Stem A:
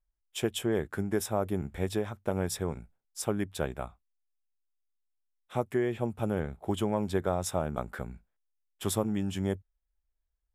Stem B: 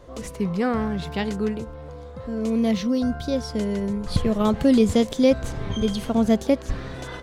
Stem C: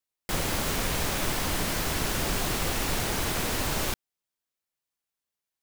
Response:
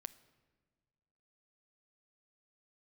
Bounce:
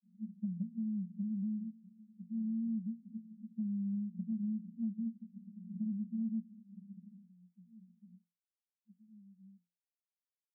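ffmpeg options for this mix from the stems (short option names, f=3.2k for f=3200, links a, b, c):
-filter_complex "[0:a]acompressor=threshold=-31dB:ratio=6,aphaser=in_gain=1:out_gain=1:delay=1.7:decay=0.61:speed=0.38:type=triangular,volume=-17.5dB[a];[1:a]acompressor=threshold=-29dB:ratio=1.5,volume=-3dB[b];[a][b]amix=inputs=2:normalize=0,asuperpass=centerf=200:order=20:qfactor=3.5,acompressor=threshold=-34dB:ratio=6"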